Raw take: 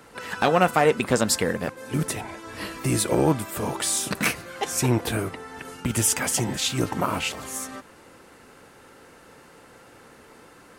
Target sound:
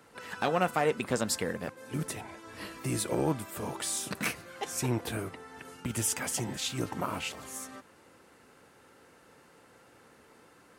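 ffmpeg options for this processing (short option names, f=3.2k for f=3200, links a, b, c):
-af "highpass=56,volume=-8.5dB"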